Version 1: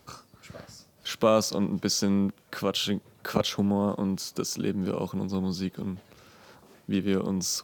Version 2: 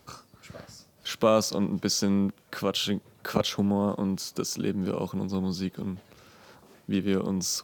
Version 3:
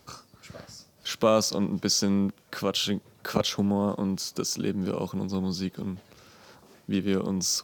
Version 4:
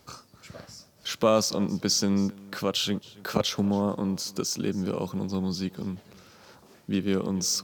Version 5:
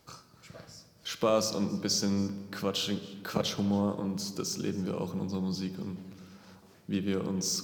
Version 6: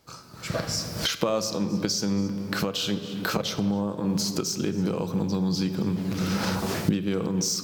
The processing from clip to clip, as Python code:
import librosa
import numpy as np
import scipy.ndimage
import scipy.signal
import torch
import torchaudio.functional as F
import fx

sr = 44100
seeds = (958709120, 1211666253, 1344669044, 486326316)

y1 = x
y2 = fx.peak_eq(y1, sr, hz=5400.0, db=3.5, octaves=0.77)
y3 = y2 + 10.0 ** (-22.0 / 20.0) * np.pad(y2, (int(275 * sr / 1000.0), 0))[:len(y2)]
y4 = fx.room_shoebox(y3, sr, seeds[0], volume_m3=1900.0, walls='mixed', distance_m=0.66)
y4 = y4 * librosa.db_to_amplitude(-5.0)
y5 = fx.recorder_agc(y4, sr, target_db=-17.5, rise_db_per_s=38.0, max_gain_db=30)